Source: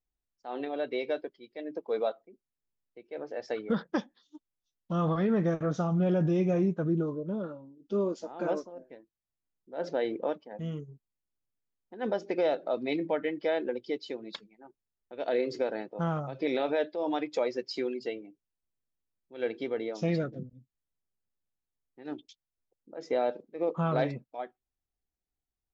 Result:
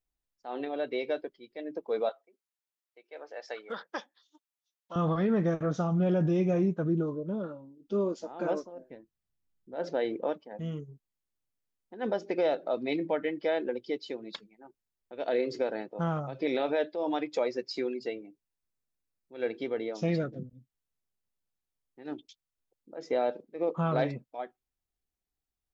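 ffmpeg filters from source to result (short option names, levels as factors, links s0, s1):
-filter_complex "[0:a]asettb=1/sr,asplit=3[s0][s1][s2];[s0]atrim=end=2.094[s3];[s1]atrim=start=2.09:end=4.96,asetpts=PTS-STARTPTS,afade=t=in:d=0.004:c=qsin,afade=t=out:st=2.866:d=0.004:c=qsin,highpass=680[s4];[s2]atrim=start=4.956[s5];[s3][s4]acrossfade=d=0.004:c1=hsin:c2=qsin[s6];[s6][s5]acrossfade=d=0.004:c1=qsin:c2=hsin,asettb=1/sr,asplit=3[s7][s8][s9];[s7]atrim=end=8.904[s10];[s8]atrim=start=8.9:end=9.76,asetpts=PTS-STARTPTS,afade=t=in:d=0.004:c=qsin,afade=t=out:st=0.856:d=0.004:c=qsin,bass=f=250:g=9,treble=f=4000:g=-2[s11];[s9]atrim=start=9.756[s12];[s10][s11]acrossfade=d=0.004:c1=hsin:c2=qsin[s13];[s13][s12]acrossfade=d=0.004:c1=qsin:c2=hsin,asettb=1/sr,asplit=3[s14][s15][s16];[s14]atrim=end=17.474[s17];[s15]atrim=start=17.47:end=19.55,asetpts=PTS-STARTPTS,afade=t=in:d=0.004:c=qsin,afade=t=out:st=2.076:d=0.004:c=qsin,bandreject=f=3100:w=9.1[s18];[s16]atrim=start=19.546[s19];[s17][s18]acrossfade=d=0.004:c1=hsin:c2=qsin[s20];[s20][s19]acrossfade=d=0.004:c1=qsin:c2=hsin"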